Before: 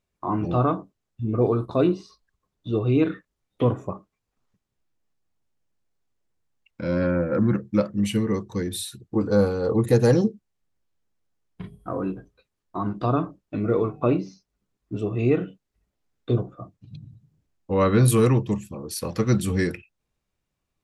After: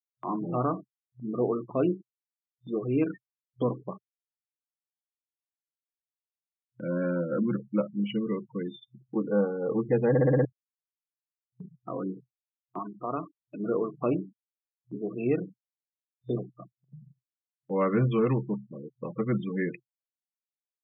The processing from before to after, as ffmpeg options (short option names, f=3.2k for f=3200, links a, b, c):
-filter_complex "[0:a]asettb=1/sr,asplit=3[a][b][c];[a]atrim=end=12.794[d];[b]atrim=start=12.79:end=13.6,asetpts=PTS-STARTPTS,afade=t=in:d=0.004:c=qsin,afade=t=out:st=0.806:d=0.004:c=qsin,lowshelf=f=350:g=-10[e];[c]atrim=start=13.596[f];[d][e]acrossfade=d=0.004:c1=hsin:c2=qsin[g];[g][f]acrossfade=d=0.004:c1=qsin:c2=hsin,asplit=7[h][i][j][k][l][m][n];[h]atrim=end=10.152[o];[i]atrim=start=10.088:end=10.152[p];[j]atrim=start=10.088:end=10.152[q];[k]atrim=start=10.088:end=10.152[r];[l]atrim=start=10.088:end=10.152[s];[m]atrim=start=10.088:end=10.152[t];[n]atrim=start=10.448[u];[o][p]acrossfade=d=0.004:c1=hsin:c2=hsin[v];[v][q]acrossfade=d=0.004:c1=hsin:c2=hsin[w];[w][r]acrossfade=d=0.004:c1=hsin:c2=hsin[x];[x][s]acrossfade=d=0.004:c1=hsin:c2=hsin[y];[y][t]acrossfade=d=0.004:c1=hsin:c2=hsin[z];[z][u]acrossfade=d=0.004:c1=hsin:c2=hsin,afftfilt=real='re*gte(hypot(re,im),0.0355)':imag='im*gte(hypot(re,im),0.0355)':win_size=1024:overlap=0.75,agate=range=-13dB:threshold=-45dB:ratio=16:detection=peak,afftfilt=real='re*between(b*sr/4096,120,3600)':imag='im*between(b*sr/4096,120,3600)':win_size=4096:overlap=0.75,volume=-5.5dB"